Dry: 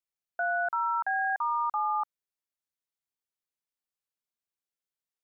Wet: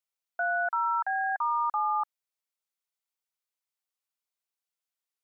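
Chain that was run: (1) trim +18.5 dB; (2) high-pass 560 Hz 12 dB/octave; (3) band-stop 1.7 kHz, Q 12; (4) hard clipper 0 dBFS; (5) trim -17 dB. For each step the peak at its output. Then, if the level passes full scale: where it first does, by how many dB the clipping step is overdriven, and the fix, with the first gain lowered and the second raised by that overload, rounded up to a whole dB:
-3.5 dBFS, -4.0 dBFS, -4.0 dBFS, -4.0 dBFS, -21.0 dBFS; nothing clips

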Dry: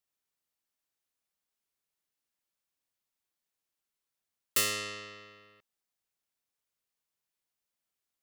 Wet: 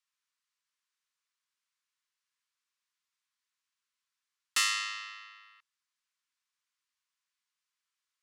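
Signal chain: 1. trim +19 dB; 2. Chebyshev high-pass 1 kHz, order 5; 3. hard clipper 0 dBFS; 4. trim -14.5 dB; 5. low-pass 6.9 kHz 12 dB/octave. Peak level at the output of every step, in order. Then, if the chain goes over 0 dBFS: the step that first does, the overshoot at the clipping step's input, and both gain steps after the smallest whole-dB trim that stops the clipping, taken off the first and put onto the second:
+4.0 dBFS, +5.0 dBFS, 0.0 dBFS, -14.5 dBFS, -15.0 dBFS; step 1, 5.0 dB; step 1 +14 dB, step 4 -9.5 dB

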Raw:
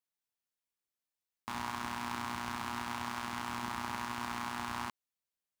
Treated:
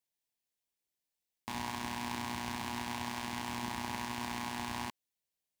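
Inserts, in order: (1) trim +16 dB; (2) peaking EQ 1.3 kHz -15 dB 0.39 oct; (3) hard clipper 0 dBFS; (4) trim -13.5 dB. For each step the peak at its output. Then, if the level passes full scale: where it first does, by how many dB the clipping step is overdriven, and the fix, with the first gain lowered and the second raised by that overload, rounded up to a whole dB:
-4.0 dBFS, -5.0 dBFS, -5.0 dBFS, -18.5 dBFS; nothing clips

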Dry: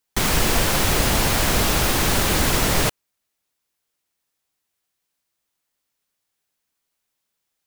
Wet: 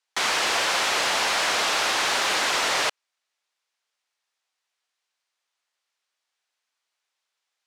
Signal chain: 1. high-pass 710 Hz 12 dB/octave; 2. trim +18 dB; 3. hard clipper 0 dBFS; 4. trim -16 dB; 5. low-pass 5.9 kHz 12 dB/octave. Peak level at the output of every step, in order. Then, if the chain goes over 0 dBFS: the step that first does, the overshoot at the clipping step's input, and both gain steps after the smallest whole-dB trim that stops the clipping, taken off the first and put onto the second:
-10.0 dBFS, +8.0 dBFS, 0.0 dBFS, -16.0 dBFS, -15.0 dBFS; step 2, 8.0 dB; step 2 +10 dB, step 4 -8 dB

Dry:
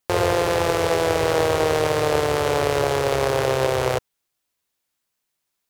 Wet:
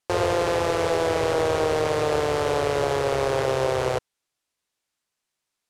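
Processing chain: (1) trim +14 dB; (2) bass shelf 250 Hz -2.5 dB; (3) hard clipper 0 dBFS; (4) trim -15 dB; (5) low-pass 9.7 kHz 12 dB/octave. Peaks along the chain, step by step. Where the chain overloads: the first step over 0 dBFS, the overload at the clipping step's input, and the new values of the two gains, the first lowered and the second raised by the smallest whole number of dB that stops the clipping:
+8.5 dBFS, +8.5 dBFS, 0.0 dBFS, -15.0 dBFS, -14.0 dBFS; step 1, 8.5 dB; step 1 +5 dB, step 4 -6 dB

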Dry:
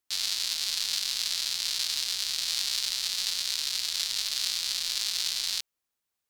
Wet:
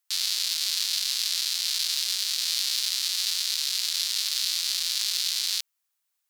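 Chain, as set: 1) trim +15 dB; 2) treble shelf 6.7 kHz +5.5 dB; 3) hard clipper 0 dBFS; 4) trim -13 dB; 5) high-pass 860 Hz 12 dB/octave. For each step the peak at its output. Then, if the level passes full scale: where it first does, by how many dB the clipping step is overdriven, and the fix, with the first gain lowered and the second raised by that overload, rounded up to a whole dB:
+3.5 dBFS, +5.5 dBFS, 0.0 dBFS, -13.0 dBFS, -11.5 dBFS; step 1, 5.5 dB; step 1 +9 dB, step 4 -7 dB

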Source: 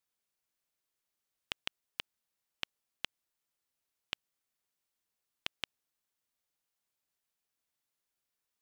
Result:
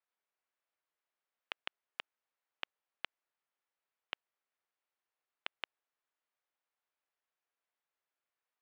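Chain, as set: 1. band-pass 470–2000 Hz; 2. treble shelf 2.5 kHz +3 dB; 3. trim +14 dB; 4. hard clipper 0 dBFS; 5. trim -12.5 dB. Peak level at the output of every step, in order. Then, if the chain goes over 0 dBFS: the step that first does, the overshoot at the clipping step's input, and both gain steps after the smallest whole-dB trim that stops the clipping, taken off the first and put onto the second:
-21.0 dBFS, -19.5 dBFS, -5.5 dBFS, -5.5 dBFS, -18.0 dBFS; nothing clips

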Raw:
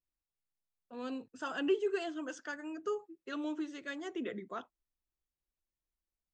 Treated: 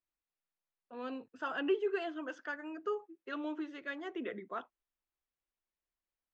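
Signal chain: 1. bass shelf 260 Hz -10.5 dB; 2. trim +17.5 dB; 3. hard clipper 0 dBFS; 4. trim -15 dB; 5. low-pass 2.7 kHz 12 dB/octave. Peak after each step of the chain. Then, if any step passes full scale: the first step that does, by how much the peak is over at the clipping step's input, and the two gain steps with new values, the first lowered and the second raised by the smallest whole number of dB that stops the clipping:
-23.5 dBFS, -6.0 dBFS, -6.0 dBFS, -21.0 dBFS, -21.5 dBFS; nothing clips

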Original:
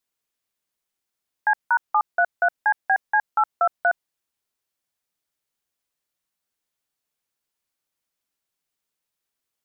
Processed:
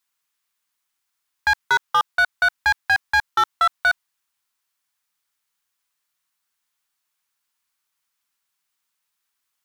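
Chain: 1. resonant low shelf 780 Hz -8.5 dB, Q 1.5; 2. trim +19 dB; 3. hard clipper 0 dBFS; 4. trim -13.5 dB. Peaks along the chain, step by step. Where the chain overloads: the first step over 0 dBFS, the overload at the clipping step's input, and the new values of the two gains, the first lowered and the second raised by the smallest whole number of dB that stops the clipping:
-10.5 dBFS, +8.5 dBFS, 0.0 dBFS, -13.5 dBFS; step 2, 8.5 dB; step 2 +10 dB, step 4 -4.5 dB

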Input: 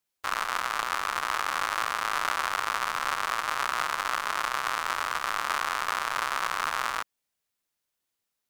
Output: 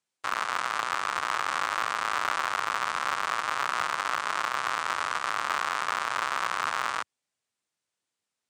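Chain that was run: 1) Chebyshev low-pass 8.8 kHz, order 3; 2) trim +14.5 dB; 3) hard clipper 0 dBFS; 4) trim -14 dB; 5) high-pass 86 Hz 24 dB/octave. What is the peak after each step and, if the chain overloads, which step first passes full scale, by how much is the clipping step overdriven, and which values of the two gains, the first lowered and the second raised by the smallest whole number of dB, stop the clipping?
-10.0 dBFS, +4.5 dBFS, 0.0 dBFS, -14.0 dBFS, -13.5 dBFS; step 2, 4.5 dB; step 2 +9.5 dB, step 4 -9 dB

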